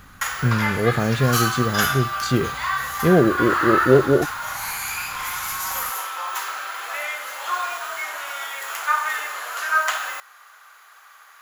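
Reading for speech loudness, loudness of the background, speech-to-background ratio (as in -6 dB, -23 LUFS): -21.0 LUFS, -24.5 LUFS, 3.5 dB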